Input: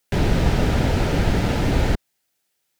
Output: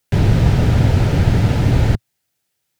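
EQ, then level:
parametric band 110 Hz +11.5 dB 1.1 octaves
0.0 dB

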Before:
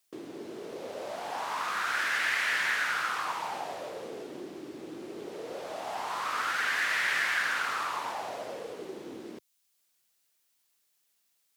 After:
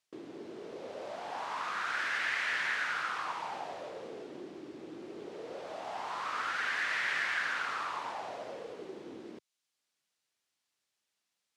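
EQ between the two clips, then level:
high-frequency loss of the air 64 metres
−3.5 dB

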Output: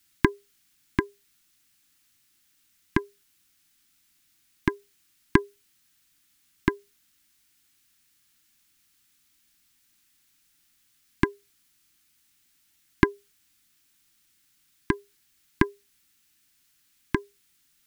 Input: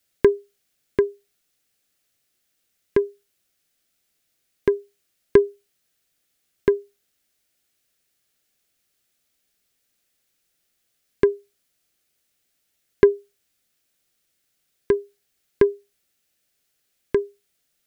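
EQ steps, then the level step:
elliptic band-stop filter 330–860 Hz, stop band 40 dB
+6.0 dB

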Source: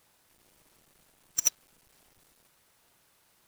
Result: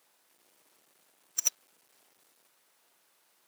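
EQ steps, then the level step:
high-pass filter 300 Hz 12 dB per octave
−2.0 dB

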